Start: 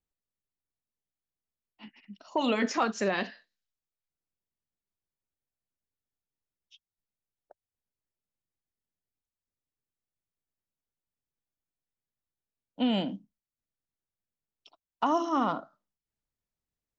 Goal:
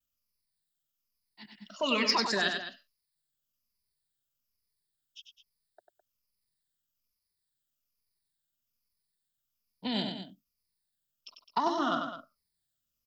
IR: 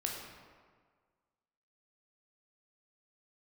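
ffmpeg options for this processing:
-filter_complex "[0:a]afftfilt=real='re*pow(10,12/40*sin(2*PI*(0.86*log(max(b,1)*sr/1024/100)/log(2)-(-0.9)*(pts-256)/sr)))':imag='im*pow(10,12/40*sin(2*PI*(0.86*log(max(b,1)*sr/1024/100)/log(2)-(-0.9)*(pts-256)/sr)))':win_size=1024:overlap=0.75,equalizer=frequency=315:width_type=o:width=0.33:gain=-9,equalizer=frequency=500:width_type=o:width=0.33:gain=-6,equalizer=frequency=800:width_type=o:width=0.33:gain=-10,equalizer=frequency=5000:width_type=o:width=0.33:gain=10,acrossover=split=420[link_01][link_02];[link_01]alimiter=level_in=6.5dB:limit=-24dB:level=0:latency=1:release=156,volume=-6.5dB[link_03];[link_03][link_02]amix=inputs=2:normalize=0,atempo=1.3,asplit=2[link_04][link_05];[link_05]aecho=0:1:96.21|209.9:0.501|0.251[link_06];[link_04][link_06]amix=inputs=2:normalize=0,aexciter=amount=1.6:drive=5.3:freq=3400"

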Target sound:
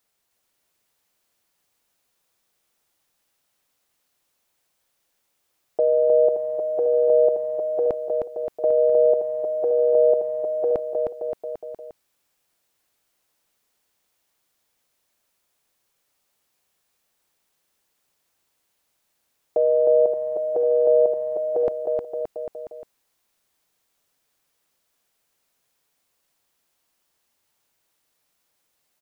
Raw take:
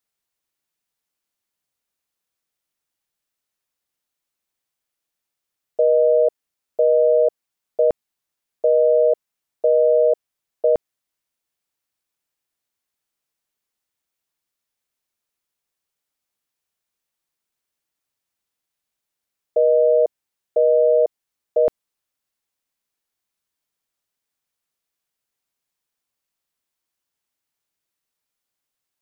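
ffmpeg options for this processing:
ffmpeg -i in.wav -af "equalizer=frequency=600:width=1:gain=3.5,alimiter=limit=-20dB:level=0:latency=1:release=11,aecho=1:1:310|573.5|797.5|987.9|1150:0.631|0.398|0.251|0.158|0.1,volume=7.5dB" out.wav

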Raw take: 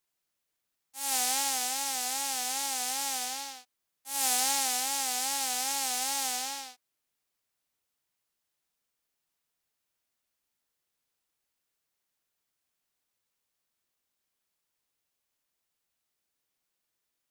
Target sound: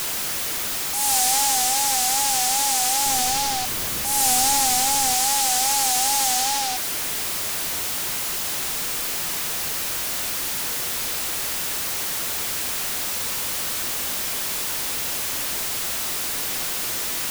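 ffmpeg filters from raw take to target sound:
ffmpeg -i in.wav -filter_complex "[0:a]aeval=exprs='val(0)+0.5*0.0447*sgn(val(0))':channel_layout=same,asettb=1/sr,asplit=3[link_01][link_02][link_03];[link_01]atrim=end=3.064[link_04];[link_02]atrim=start=3.06:end=5.14,asetpts=PTS-STARTPTS,afade=type=in:duration=0.004:curve=qsin,afade=type=out:start_time=2.076:duration=0.004:curve=qsin,lowshelf=frequency=280:gain=9.5[link_05];[link_03]atrim=start=5.136[link_06];[link_04][link_05]acrossfade=duration=0.004:curve1=hsin:curve2=qsin[link_07];[link_07][link_06]acrossfade=duration=0.004:curve1=qsin:curve2=hsin,asoftclip=type=tanh:threshold=-20dB,volume=7.5dB" out.wav

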